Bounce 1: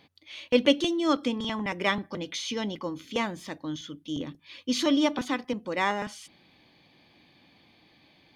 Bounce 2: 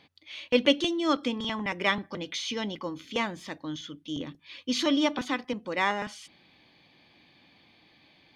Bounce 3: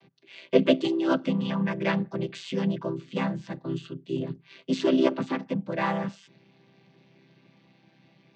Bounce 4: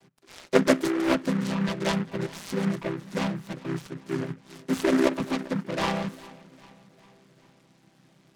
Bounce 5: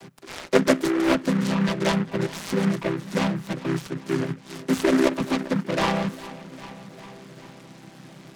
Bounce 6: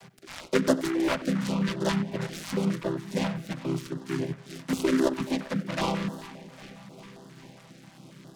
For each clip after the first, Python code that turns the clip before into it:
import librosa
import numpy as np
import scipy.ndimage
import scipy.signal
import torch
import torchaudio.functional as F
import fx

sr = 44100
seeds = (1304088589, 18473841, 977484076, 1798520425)

y1 = fx.lowpass(x, sr, hz=3400.0, slope=6)
y1 = fx.tilt_shelf(y1, sr, db=-3.5, hz=1500.0)
y1 = y1 * librosa.db_to_amplitude(1.5)
y2 = fx.chord_vocoder(y1, sr, chord='major triad', root=48)
y2 = y2 * librosa.db_to_amplitude(3.5)
y3 = fx.echo_feedback(y2, sr, ms=401, feedback_pct=54, wet_db=-20.5)
y3 = fx.noise_mod_delay(y3, sr, seeds[0], noise_hz=1300.0, depth_ms=0.11)
y4 = fx.band_squash(y3, sr, depth_pct=40)
y4 = y4 * librosa.db_to_amplitude(4.0)
y5 = fx.echo_tape(y4, sr, ms=93, feedback_pct=62, wet_db=-15, lp_hz=3200.0, drive_db=5.0, wow_cents=20)
y5 = fx.filter_held_notch(y5, sr, hz=7.4, low_hz=310.0, high_hz=2300.0)
y5 = y5 * librosa.db_to_amplitude(-3.5)